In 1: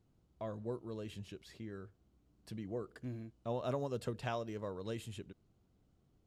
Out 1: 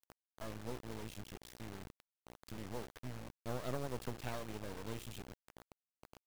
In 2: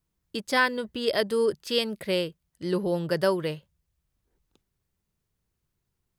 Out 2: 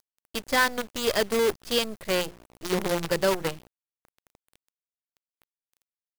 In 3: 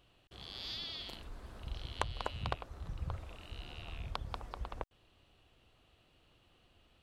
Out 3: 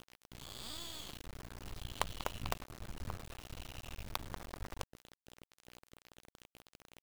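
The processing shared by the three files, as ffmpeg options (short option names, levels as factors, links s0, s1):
-af "aeval=exprs='val(0)+0.00251*(sin(2*PI*60*n/s)+sin(2*PI*2*60*n/s)/2+sin(2*PI*3*60*n/s)/3+sin(2*PI*4*60*n/s)/4+sin(2*PI*5*60*n/s)/5)':c=same,bandreject=f=175.9:t=h:w=4,bandreject=f=351.8:t=h:w=4,acrusher=bits=5:dc=4:mix=0:aa=0.000001"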